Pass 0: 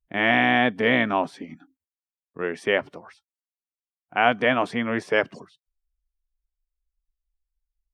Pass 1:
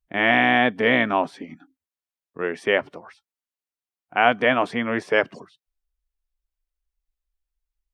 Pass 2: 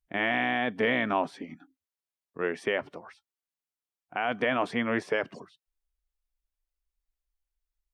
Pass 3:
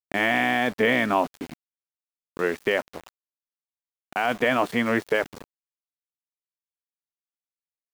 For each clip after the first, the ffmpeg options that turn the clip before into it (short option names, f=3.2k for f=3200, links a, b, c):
-af "bass=f=250:g=-3,treble=f=4k:g=-3,volume=2dB"
-af "alimiter=limit=-12dB:level=0:latency=1:release=57,volume=-3.5dB"
-af "aeval=exprs='val(0)*gte(abs(val(0)),0.01)':c=same,volume=5dB"